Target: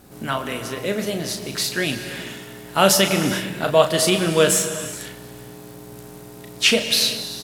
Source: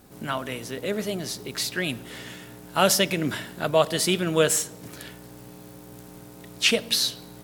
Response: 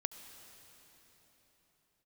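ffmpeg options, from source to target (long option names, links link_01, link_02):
-filter_complex "[0:a]asplit=2[link_01][link_02];[link_02]adelay=36,volume=-8dB[link_03];[link_01][link_03]amix=inputs=2:normalize=0[link_04];[1:a]atrim=start_sample=2205,afade=type=out:start_time=0.35:duration=0.01,atrim=end_sample=15876,asetrate=29106,aresample=44100[link_05];[link_04][link_05]afir=irnorm=-1:irlink=0,volume=3dB"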